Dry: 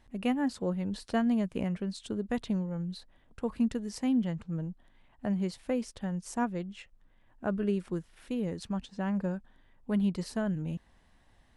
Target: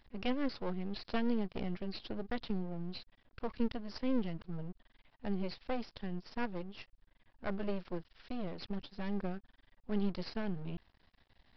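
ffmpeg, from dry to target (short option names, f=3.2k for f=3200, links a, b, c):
-af "highshelf=f=3.9k:g=11.5,aresample=11025,aeval=exprs='max(val(0),0)':c=same,aresample=44100,volume=-1dB"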